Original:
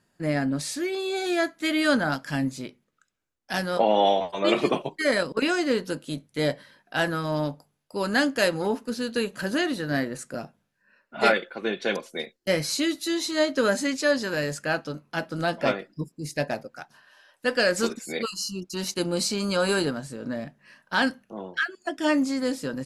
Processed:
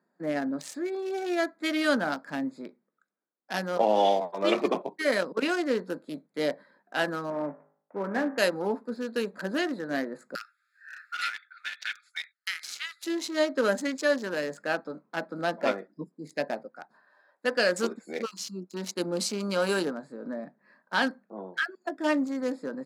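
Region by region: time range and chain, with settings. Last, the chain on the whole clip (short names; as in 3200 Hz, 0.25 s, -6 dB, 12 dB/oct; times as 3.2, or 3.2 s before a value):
7.3–8.38 CVSD 16 kbps + LPF 2300 Hz + de-hum 51.83 Hz, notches 40
10.35–13.04 brick-wall FIR high-pass 1200 Hz + three-band squash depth 100%
whole clip: Wiener smoothing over 15 samples; Chebyshev high-pass 180 Hz, order 4; low shelf 240 Hz -5 dB; gain -1 dB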